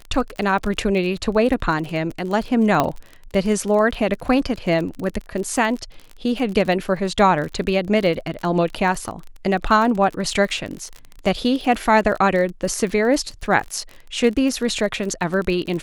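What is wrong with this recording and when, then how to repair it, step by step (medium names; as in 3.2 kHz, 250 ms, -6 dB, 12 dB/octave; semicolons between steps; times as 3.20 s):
crackle 32 per s -26 dBFS
2.80 s: pop -4 dBFS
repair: de-click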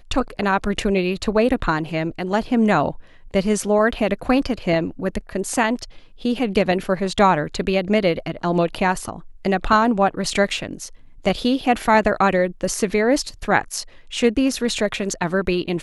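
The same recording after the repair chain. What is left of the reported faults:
nothing left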